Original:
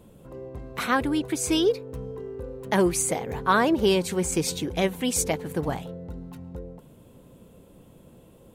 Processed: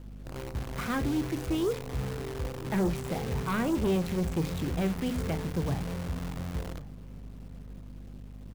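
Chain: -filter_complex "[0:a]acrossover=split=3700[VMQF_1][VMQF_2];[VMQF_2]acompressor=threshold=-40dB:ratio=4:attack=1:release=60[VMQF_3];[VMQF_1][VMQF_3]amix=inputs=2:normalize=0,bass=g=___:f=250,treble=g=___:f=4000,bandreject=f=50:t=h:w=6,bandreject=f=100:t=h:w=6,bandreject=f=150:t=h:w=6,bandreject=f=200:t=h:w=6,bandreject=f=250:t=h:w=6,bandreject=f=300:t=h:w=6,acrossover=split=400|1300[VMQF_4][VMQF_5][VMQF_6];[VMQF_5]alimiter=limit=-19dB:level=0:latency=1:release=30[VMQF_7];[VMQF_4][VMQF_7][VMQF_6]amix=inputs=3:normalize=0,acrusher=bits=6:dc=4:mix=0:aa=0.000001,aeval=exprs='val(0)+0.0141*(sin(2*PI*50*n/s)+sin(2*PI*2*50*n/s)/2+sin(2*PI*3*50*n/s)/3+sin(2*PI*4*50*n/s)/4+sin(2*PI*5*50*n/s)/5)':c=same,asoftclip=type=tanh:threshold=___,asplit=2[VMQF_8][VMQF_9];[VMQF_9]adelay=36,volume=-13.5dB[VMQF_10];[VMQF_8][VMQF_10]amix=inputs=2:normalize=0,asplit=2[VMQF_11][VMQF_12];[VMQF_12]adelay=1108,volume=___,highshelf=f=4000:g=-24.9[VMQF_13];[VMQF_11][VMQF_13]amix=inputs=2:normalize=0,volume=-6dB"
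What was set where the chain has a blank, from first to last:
13, -14, -17dB, -20dB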